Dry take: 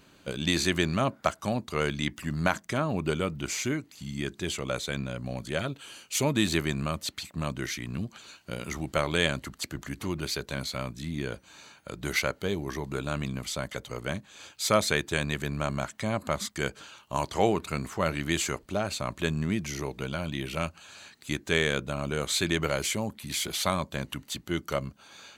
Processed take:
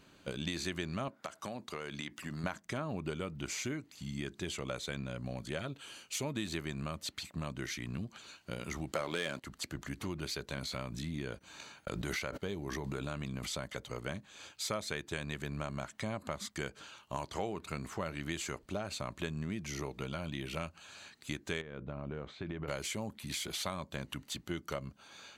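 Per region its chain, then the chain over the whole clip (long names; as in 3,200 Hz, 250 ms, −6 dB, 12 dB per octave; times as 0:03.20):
0:01.08–0:02.44: high-pass filter 270 Hz 6 dB per octave + downward compressor 10 to 1, threshold −31 dBFS
0:08.93–0:09.44: high-pass filter 210 Hz + leveller curve on the samples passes 2
0:10.57–0:13.67: noise gate −46 dBFS, range −37 dB + background raised ahead of every attack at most 36 dB per second
0:19.72–0:20.18: parametric band 1,400 Hz +6.5 dB 0.35 octaves + notch filter 1,500 Hz, Q 5.4
0:21.61–0:22.68: downward compressor 4 to 1, threshold −29 dBFS + head-to-tape spacing loss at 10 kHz 42 dB
whole clip: downward compressor 4 to 1, threshold −31 dBFS; high-shelf EQ 11,000 Hz −6 dB; level −3.5 dB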